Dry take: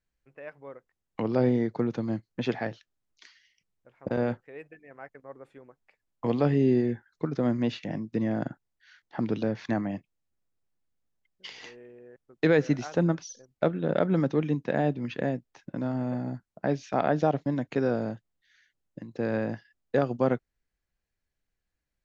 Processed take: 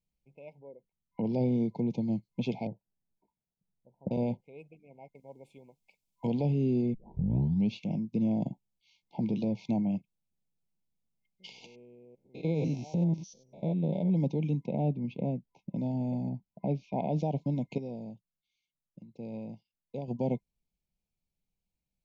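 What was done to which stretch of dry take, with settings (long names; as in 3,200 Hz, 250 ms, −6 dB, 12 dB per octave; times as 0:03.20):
0:00.59–0:01.24: spectral envelope exaggerated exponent 1.5
0:02.67–0:04.11: Butterworth low-pass 1,100 Hz
0:05.15–0:06.27: high-shelf EQ 2,100 Hz +11 dB
0:06.94: tape start 0.82 s
0:08.43–0:09.53: double-tracking delay 15 ms −11 dB
0:11.66–0:14.10: spectrum averaged block by block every 100 ms
0:14.66–0:15.74: low-pass filter 1,600 Hz 6 dB per octave
0:16.29–0:17.08: low-pass filter 2,700 Hz
0:17.78–0:20.08: clip gain −9.5 dB
whole clip: brick-wall band-stop 1,000–2,100 Hz; drawn EQ curve 100 Hz 0 dB, 190 Hz +9 dB, 290 Hz −2 dB; brickwall limiter −18 dBFS; level −3.5 dB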